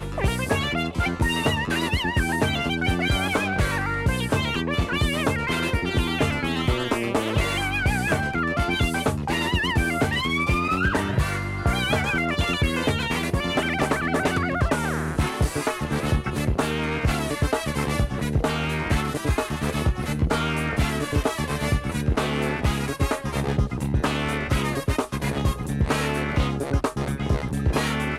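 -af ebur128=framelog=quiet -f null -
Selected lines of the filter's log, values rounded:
Integrated loudness:
  I:         -24.1 LUFS
  Threshold: -34.1 LUFS
Loudness range:
  LRA:         1.9 LU
  Threshold: -44.1 LUFS
  LRA low:   -25.0 LUFS
  LRA high:  -23.1 LUFS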